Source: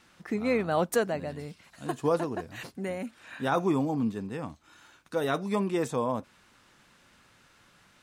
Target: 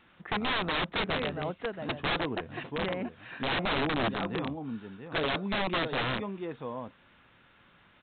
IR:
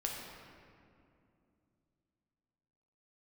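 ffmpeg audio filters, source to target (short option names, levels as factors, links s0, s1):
-af "aecho=1:1:681:0.355,aresample=8000,aeval=exprs='(mod(15.8*val(0)+1,2)-1)/15.8':c=same,aresample=44100"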